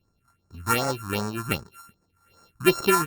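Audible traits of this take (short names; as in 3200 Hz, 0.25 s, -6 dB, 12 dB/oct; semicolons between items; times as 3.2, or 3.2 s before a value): a buzz of ramps at a fixed pitch in blocks of 32 samples; phasing stages 4, 2.6 Hz, lowest notch 470–3100 Hz; Opus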